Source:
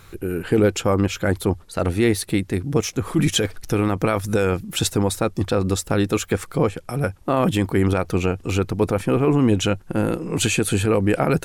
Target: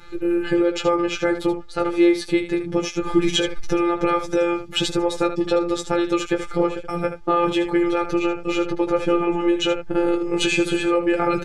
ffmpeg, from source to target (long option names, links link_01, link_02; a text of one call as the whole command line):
ffmpeg -i in.wav -filter_complex "[0:a]lowpass=4900,aecho=1:1:2.4:0.92,acompressor=threshold=-16dB:ratio=3,afftfilt=real='hypot(re,im)*cos(PI*b)':imag='0':win_size=1024:overlap=0.75,asplit=2[link_01][link_02];[link_02]aecho=0:1:15|78:0.531|0.335[link_03];[link_01][link_03]amix=inputs=2:normalize=0,volume=2.5dB" out.wav